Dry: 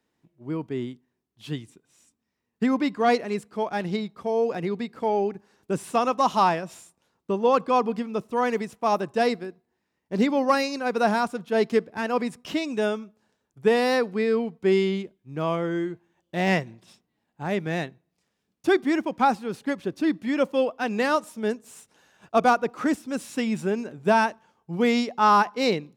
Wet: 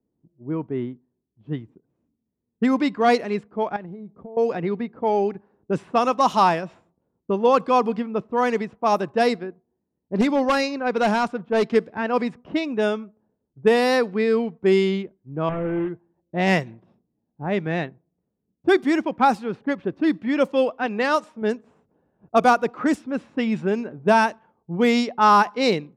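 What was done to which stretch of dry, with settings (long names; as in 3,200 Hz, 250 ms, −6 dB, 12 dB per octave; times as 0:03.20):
0:03.76–0:04.37: downward compressor 20 to 1, threshold −35 dBFS
0:10.21–0:11.75: hard clipping −18 dBFS
0:15.49–0:15.89: linear delta modulator 16 kbit/s, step −40.5 dBFS
0:20.86–0:21.42: low-shelf EQ 300 Hz −5.5 dB
whole clip: low-pass that shuts in the quiet parts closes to 390 Hz, open at −18 dBFS; level +3 dB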